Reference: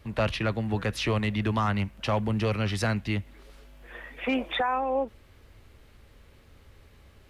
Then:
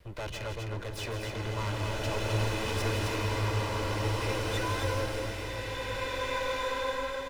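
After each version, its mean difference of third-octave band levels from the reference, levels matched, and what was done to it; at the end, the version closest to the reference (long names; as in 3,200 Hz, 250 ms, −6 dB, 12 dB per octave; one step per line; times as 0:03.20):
16.0 dB: lower of the sound and its delayed copy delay 2 ms
soft clipping −30 dBFS, distortion −10 dB
on a send: loudspeakers that aren't time-aligned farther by 57 metres −9 dB, 89 metres −5 dB
on the sum: slow-attack reverb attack 2,060 ms, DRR −6 dB
level −3.5 dB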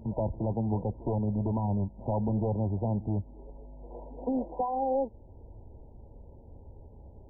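11.0 dB: in parallel at +2 dB: downward compressor, threshold −37 dBFS, peak gain reduction 14.5 dB
on the sum: gain into a clipping stage and back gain 22.5 dB
linear-phase brick-wall low-pass 1,000 Hz
backwards echo 68 ms −19 dB
level −2 dB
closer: second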